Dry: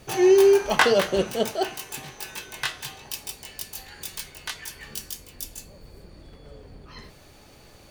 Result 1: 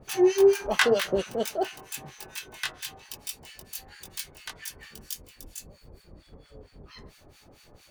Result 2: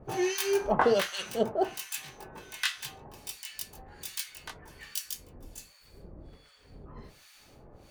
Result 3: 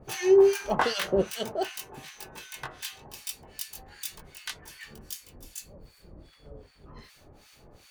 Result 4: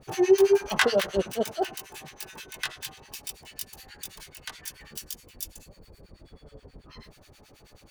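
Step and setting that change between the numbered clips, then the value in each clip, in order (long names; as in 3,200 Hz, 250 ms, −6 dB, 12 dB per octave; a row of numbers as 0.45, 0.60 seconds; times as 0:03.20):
two-band tremolo in antiphase, speed: 4.4, 1.3, 2.6, 9.3 Hertz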